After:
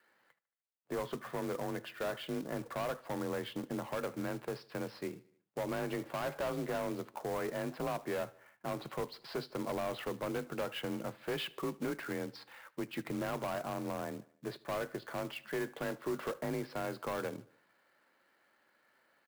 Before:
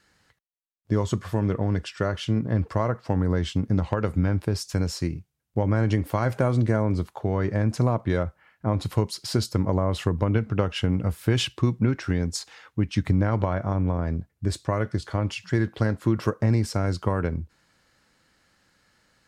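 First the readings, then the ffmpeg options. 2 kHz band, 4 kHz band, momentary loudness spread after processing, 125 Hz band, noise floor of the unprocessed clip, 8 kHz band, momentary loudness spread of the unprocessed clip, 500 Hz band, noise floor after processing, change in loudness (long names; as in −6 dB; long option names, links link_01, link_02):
−7.5 dB, −11.0 dB, 5 LU, −24.0 dB, −73 dBFS, −12.0 dB, 6 LU, −8.5 dB, −73 dBFS, −13.5 dB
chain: -filter_complex "[0:a]afreqshift=31,highpass=510,lowpass=2200,aresample=11025,asoftclip=type=tanh:threshold=-30dB,aresample=44100,acrusher=bits=3:mode=log:mix=0:aa=0.000001,equalizer=frequency=1700:width=0.35:gain=-4.5,asplit=2[link_01][link_02];[link_02]aecho=0:1:75|150|225|300:0.0708|0.0404|0.023|0.0131[link_03];[link_01][link_03]amix=inputs=2:normalize=0,volume=1dB"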